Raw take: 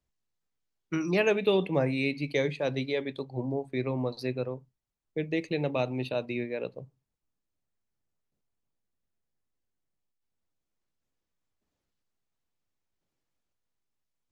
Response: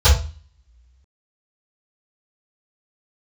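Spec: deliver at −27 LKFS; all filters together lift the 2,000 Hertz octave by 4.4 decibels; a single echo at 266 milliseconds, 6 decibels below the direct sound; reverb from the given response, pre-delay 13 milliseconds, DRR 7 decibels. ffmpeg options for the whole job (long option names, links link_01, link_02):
-filter_complex "[0:a]equalizer=frequency=2000:width_type=o:gain=5.5,aecho=1:1:266:0.501,asplit=2[link_01][link_02];[1:a]atrim=start_sample=2205,adelay=13[link_03];[link_02][link_03]afir=irnorm=-1:irlink=0,volume=-28.5dB[link_04];[link_01][link_04]amix=inputs=2:normalize=0,volume=1dB"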